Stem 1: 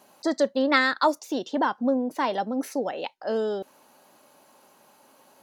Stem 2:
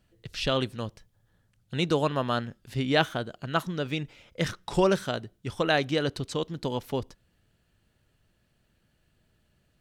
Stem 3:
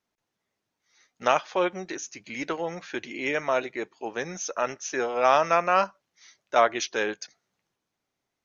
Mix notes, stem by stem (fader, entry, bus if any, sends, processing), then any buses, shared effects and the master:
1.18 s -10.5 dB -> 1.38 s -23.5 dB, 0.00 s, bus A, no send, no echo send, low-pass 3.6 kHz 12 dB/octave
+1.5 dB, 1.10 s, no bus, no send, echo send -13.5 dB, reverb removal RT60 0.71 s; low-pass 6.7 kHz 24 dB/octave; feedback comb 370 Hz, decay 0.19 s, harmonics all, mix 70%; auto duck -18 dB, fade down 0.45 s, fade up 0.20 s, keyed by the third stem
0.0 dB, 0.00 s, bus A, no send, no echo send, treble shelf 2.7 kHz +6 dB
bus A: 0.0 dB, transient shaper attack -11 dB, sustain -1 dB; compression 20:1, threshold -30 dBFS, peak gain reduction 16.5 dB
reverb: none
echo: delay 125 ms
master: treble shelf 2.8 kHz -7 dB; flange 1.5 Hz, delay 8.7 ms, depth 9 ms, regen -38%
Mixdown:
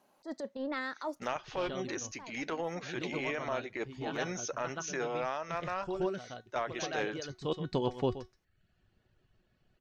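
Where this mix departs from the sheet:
stem 1: missing low-pass 3.6 kHz 12 dB/octave; stem 2 +1.5 dB -> +8.5 dB; master: missing flange 1.5 Hz, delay 8.7 ms, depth 9 ms, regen -38%

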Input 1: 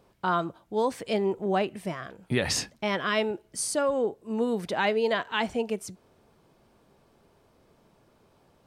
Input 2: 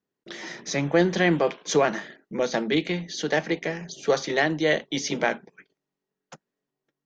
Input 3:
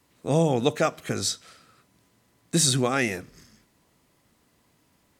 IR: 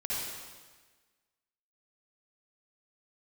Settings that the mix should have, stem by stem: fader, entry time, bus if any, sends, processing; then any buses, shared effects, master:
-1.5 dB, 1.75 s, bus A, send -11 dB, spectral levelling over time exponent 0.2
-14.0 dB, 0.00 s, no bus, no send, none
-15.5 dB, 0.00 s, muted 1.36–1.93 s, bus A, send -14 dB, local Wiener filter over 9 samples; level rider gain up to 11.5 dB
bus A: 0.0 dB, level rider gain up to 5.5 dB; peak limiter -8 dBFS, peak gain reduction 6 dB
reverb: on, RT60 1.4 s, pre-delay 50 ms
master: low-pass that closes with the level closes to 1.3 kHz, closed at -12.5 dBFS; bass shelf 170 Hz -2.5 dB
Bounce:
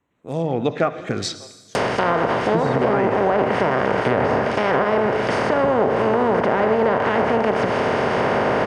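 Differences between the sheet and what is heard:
stem 2 -14.0 dB -> -21.5 dB; stem 3 -15.5 dB -> -6.5 dB

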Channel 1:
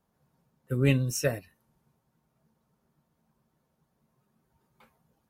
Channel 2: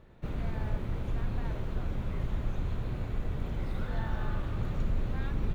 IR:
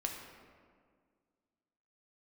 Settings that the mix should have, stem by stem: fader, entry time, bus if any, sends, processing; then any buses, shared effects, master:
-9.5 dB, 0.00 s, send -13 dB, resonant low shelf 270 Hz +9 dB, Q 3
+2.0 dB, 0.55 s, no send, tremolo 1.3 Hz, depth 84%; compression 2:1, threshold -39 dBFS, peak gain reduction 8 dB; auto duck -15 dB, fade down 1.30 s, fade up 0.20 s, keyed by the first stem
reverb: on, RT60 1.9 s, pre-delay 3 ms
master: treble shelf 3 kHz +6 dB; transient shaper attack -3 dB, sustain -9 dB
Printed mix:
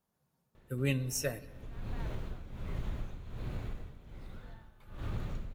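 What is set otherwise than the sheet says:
stem 1: missing resonant low shelf 270 Hz +9 dB, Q 3; master: missing transient shaper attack -3 dB, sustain -9 dB

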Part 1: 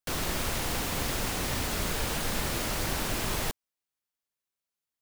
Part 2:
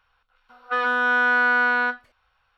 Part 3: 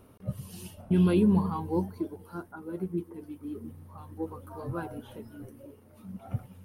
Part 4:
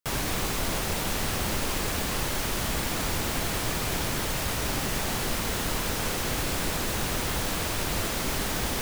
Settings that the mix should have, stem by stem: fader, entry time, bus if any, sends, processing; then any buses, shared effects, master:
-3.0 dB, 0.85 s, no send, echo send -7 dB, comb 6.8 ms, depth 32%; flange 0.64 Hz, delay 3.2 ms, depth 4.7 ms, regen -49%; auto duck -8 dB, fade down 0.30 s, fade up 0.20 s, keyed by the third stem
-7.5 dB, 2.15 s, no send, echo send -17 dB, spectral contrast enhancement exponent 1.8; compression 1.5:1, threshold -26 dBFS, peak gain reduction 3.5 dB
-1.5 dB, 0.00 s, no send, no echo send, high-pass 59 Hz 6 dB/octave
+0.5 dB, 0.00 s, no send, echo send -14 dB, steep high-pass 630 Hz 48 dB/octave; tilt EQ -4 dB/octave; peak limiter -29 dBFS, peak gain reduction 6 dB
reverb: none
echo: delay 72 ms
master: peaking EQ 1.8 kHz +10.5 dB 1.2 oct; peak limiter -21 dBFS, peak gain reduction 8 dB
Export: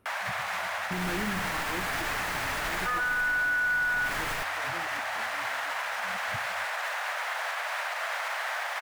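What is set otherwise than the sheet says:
stem 1: missing flange 0.64 Hz, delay 3.2 ms, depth 4.7 ms, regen -49%; stem 2: missing compression 1.5:1, threshold -26 dBFS, peak gain reduction 3.5 dB; stem 3 -1.5 dB -> -10.0 dB

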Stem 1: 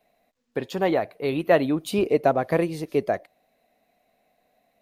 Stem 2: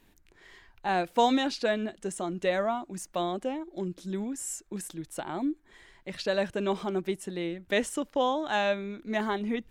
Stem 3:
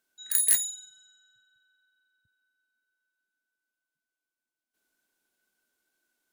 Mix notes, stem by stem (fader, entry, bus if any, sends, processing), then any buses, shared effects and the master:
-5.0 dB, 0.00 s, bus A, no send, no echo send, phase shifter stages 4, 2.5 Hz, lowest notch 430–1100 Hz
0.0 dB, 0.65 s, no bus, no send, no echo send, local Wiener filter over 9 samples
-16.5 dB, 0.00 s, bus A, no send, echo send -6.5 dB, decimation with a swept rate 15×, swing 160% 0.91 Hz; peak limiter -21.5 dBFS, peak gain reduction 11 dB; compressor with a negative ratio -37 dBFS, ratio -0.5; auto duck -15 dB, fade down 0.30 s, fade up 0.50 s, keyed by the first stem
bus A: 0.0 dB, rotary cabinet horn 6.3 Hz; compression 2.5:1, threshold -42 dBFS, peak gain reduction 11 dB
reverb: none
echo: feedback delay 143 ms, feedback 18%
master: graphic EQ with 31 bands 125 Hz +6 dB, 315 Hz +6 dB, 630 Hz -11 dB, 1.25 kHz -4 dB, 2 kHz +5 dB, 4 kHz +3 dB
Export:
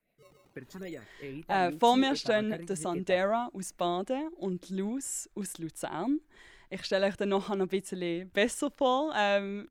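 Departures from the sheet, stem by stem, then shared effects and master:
stem 2: missing local Wiener filter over 9 samples; master: missing graphic EQ with 31 bands 125 Hz +6 dB, 315 Hz +6 dB, 630 Hz -11 dB, 1.25 kHz -4 dB, 2 kHz +5 dB, 4 kHz +3 dB

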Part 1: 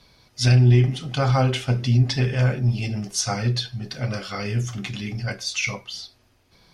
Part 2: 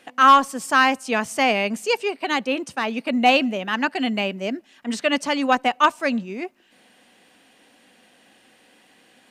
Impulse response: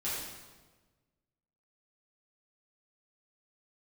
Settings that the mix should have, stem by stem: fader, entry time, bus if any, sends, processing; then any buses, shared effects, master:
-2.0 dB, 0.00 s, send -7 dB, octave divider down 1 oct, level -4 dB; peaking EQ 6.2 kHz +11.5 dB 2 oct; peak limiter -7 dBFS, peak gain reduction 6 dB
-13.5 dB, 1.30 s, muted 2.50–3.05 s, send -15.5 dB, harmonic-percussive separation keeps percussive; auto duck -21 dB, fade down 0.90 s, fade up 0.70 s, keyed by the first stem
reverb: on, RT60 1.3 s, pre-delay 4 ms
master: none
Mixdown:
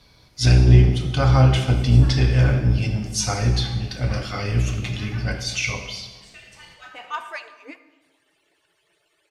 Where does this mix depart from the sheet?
stem 1: missing peaking EQ 6.2 kHz +11.5 dB 2 oct; stem 2 -13.5 dB -> -6.5 dB

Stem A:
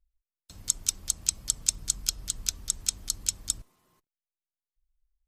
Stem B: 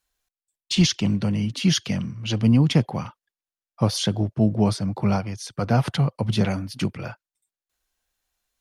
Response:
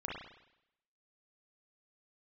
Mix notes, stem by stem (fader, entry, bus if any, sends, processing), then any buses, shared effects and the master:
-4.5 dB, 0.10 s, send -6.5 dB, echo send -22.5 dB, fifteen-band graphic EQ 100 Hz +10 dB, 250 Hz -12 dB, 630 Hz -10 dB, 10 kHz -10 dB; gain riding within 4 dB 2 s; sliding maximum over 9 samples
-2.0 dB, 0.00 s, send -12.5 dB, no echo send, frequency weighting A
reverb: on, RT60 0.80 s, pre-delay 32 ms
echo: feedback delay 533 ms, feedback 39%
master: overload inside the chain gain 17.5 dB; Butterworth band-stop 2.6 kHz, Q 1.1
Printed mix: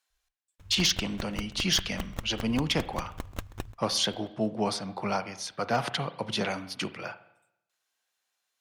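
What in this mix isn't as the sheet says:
stem A: send off; master: missing Butterworth band-stop 2.6 kHz, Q 1.1

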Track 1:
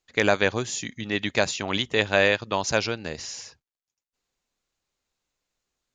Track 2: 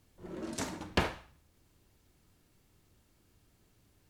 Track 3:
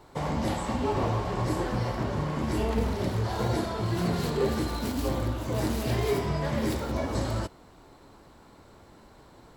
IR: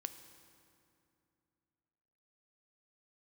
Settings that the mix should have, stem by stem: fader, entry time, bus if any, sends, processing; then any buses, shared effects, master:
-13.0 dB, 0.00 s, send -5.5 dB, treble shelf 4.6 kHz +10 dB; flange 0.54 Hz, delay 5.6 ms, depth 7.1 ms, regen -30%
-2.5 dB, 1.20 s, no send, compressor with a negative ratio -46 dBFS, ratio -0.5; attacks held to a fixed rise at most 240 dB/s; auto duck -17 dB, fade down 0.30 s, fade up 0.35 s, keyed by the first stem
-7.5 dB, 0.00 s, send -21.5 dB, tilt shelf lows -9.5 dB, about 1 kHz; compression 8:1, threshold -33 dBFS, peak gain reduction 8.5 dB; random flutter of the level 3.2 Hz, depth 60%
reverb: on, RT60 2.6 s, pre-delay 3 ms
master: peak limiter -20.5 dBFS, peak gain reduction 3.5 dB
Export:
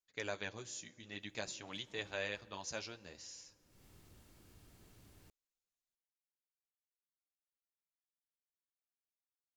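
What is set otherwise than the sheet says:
stem 1 -13.0 dB -> -20.5 dB; stem 3: muted

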